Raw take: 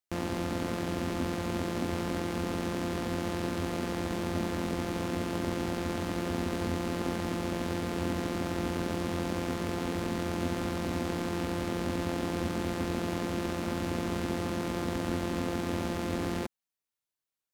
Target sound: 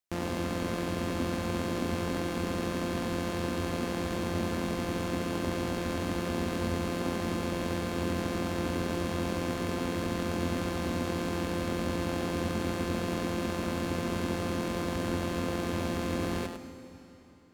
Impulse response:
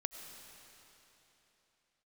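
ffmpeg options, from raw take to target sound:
-filter_complex "[0:a]asplit=2[a][b];[1:a]atrim=start_sample=2205,adelay=102[c];[b][c]afir=irnorm=-1:irlink=0,volume=-4.5dB[d];[a][d]amix=inputs=2:normalize=0"

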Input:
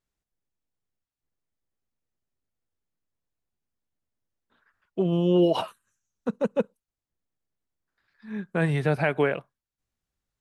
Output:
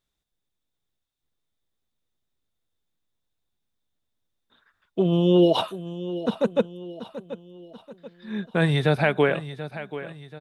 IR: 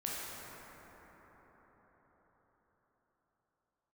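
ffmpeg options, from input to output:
-filter_complex "[0:a]equalizer=f=3.6k:w=7:g=14,asplit=2[a][b];[b]aecho=0:1:734|1468|2202|2936:0.211|0.0909|0.0391|0.0168[c];[a][c]amix=inputs=2:normalize=0,volume=3dB"

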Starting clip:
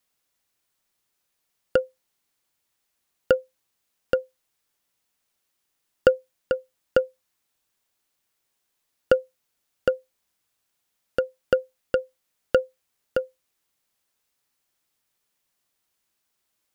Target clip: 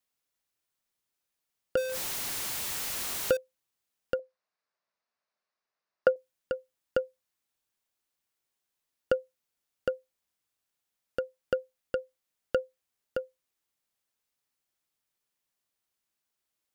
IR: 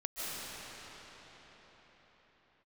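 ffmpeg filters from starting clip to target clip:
-filter_complex "[0:a]asettb=1/sr,asplit=3[a][b][c];[a]atrim=end=1.774[d];[b]atrim=start=1.77:end=3.37,asetpts=PTS-STARTPTS,afade=t=in:d=0.004:c=qsin,afade=t=out:st=1.596:d=0.004:c=qsin,aeval=exprs='val(0)+0.5*0.1*sgn(val(0))':c=same[e];[c]atrim=start=3.366[f];[d][e]acrossfade=d=0.004:c1=hsin:c2=qsin[g];[g][f]acrossfade=d=0.004:c1=qsin:c2=hsin,asettb=1/sr,asplit=3[h][i][j];[h]atrim=end=4.194[k];[i]atrim=start=4.19:end=6.16,asetpts=PTS-STARTPTS,afade=t=in:d=0.004:c=qsin,afade=t=out:st=1.966:d=0.004:c=qsin,highpass=190,equalizer=f=300:t=q:w=4:g=-8,equalizer=f=630:t=q:w=4:g=7,equalizer=f=1.1k:t=q:w=4:g=6,equalizer=f=1.6k:t=q:w=4:g=3,equalizer=f=3.2k:t=q:w=4:g=-10,lowpass=f=5k:w=0.5412,lowpass=f=5k:w=1.3066[l];[j]atrim=start=6.156[m];[k][l]acrossfade=d=0.004:c1=hsin:c2=qsin[n];[n][m]acrossfade=d=0.004:c1=qsin:c2=hsin,volume=-8dB"

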